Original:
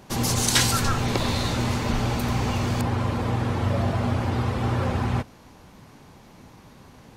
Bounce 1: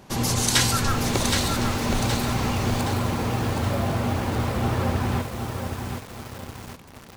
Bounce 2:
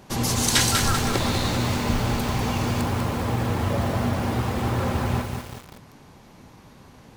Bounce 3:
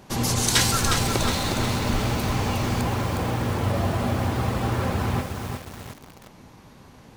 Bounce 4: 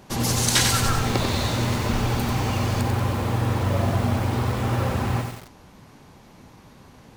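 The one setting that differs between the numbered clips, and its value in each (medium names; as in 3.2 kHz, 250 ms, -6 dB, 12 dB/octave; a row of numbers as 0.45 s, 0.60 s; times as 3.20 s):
bit-crushed delay, time: 770 ms, 195 ms, 361 ms, 93 ms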